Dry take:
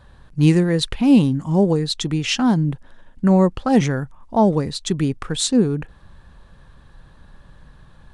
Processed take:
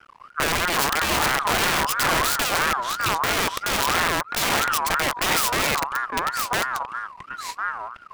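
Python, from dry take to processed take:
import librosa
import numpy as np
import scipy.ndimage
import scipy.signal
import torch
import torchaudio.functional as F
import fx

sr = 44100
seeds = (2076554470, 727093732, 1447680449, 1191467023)

p1 = fx.rider(x, sr, range_db=4, speed_s=2.0)
p2 = x + (p1 * librosa.db_to_amplitude(2.0))
p3 = np.maximum(p2, 0.0)
p4 = fx.echo_pitch(p3, sr, ms=312, semitones=-2, count=2, db_per_echo=-6.0)
p5 = (np.mod(10.0 ** (10.5 / 20.0) * p4 + 1.0, 2.0) - 1.0) / 10.0 ** (10.5 / 20.0)
p6 = fx.ring_lfo(p5, sr, carrier_hz=1200.0, swing_pct=20, hz=3.0)
y = p6 * librosa.db_to_amplitude(-2.5)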